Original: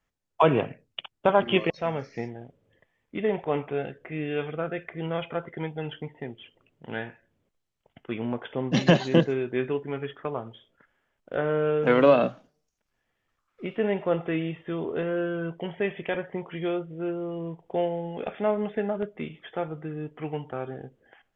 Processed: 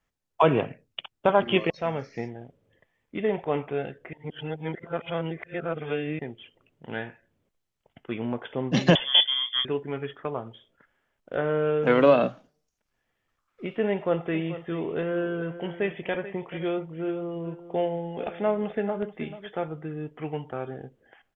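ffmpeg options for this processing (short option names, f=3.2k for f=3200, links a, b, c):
-filter_complex "[0:a]asettb=1/sr,asplit=3[a][b][c];[a]atrim=end=8.954[d];[b]atrim=start=8.95:end=9.65,asetpts=PTS-STARTPTS,afade=t=in:d=0.004:c=qsin,afade=t=out:st=0.696:d=0.004:c=qsin,lowpass=f=3.1k:t=q:w=0.5098,lowpass=f=3.1k:t=q:w=0.6013,lowpass=f=3.1k:t=q:w=0.9,lowpass=f=3.1k:t=q:w=2.563,afreqshift=-3600[e];[c]atrim=start=9.646[f];[d][e]acrossfade=d=0.004:c1=hsin:c2=qsin[g];[g][f]acrossfade=d=0.004:c1=qsin:c2=hsin,asplit=3[h][i][j];[h]afade=t=out:st=14.33:d=0.02[k];[i]aecho=1:1:434:0.211,afade=t=in:st=14.33:d=0.02,afade=t=out:st=19.63:d=0.02[l];[j]afade=t=in:st=19.63:d=0.02[m];[k][l][m]amix=inputs=3:normalize=0,asplit=3[n][o][p];[n]atrim=end=4.132[q];[o]atrim=start=4.128:end=6.192,asetpts=PTS-STARTPTS,areverse[r];[p]atrim=start=6.188[s];[q][r]acrossfade=d=0.004:c1=hsin:c2=hsin[t];[t][s]acrossfade=d=0.004:c1=hsin:c2=hsin"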